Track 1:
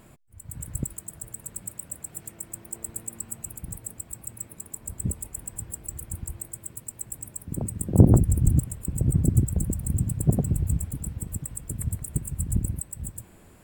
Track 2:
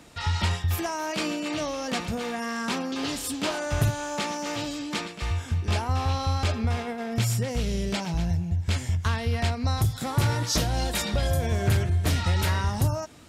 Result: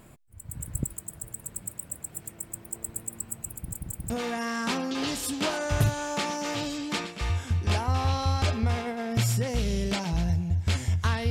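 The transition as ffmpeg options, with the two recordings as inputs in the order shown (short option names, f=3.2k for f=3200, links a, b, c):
-filter_complex "[0:a]apad=whole_dur=11.3,atrim=end=11.3,asplit=3[a][b][c];[a]atrim=end=3.742[d];[b]atrim=start=3.558:end=3.742[e];[c]atrim=start=3.558:end=3.742[f];[1:a]atrim=start=2.108:end=9.31[g];[d][e]acrossfade=d=0.004:c1=hsin:c2=hsin[h];[h][f]acrossfade=d=0.004:c1=hsin:c2=hsin[i];[i][g]acrossfade=d=0.004:c1=hsin:c2=hsin"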